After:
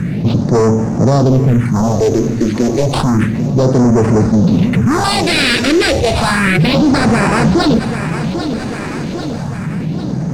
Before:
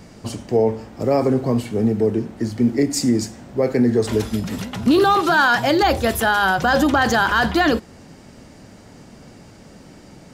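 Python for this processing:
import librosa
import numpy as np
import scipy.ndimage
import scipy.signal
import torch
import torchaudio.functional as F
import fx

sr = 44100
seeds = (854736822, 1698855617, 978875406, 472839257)

p1 = fx.self_delay(x, sr, depth_ms=0.41)
p2 = fx.highpass(p1, sr, hz=100.0, slope=6)
p3 = fx.peak_eq(p2, sr, hz=150.0, db=15.0, octaves=0.8)
p4 = fx.notch(p3, sr, hz=3200.0, q=5.4)
p5 = fx.rider(p4, sr, range_db=5, speed_s=0.5)
p6 = p4 + (p5 * 10.0 ** (-1.0 / 20.0))
p7 = fx.sample_hold(p6, sr, seeds[0], rate_hz=6400.0, jitter_pct=0)
p8 = np.clip(10.0 ** (11.5 / 20.0) * p7, -1.0, 1.0) / 10.0 ** (11.5 / 20.0)
p9 = fx.phaser_stages(p8, sr, stages=4, low_hz=140.0, high_hz=3500.0, hz=0.31, feedback_pct=25)
p10 = fx.dmg_noise_colour(p9, sr, seeds[1], colour='pink', level_db=-56.0)
p11 = fx.air_absorb(p10, sr, metres=76.0)
p12 = p11 + fx.echo_feedback(p11, sr, ms=795, feedback_pct=49, wet_db=-16, dry=0)
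p13 = fx.env_flatten(p12, sr, amount_pct=50)
y = p13 * 10.0 ** (3.0 / 20.0)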